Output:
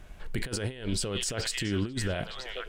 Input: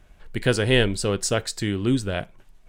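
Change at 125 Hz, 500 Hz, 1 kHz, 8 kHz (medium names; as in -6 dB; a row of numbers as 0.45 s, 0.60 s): -8.0 dB, -11.5 dB, -8.5 dB, -4.0 dB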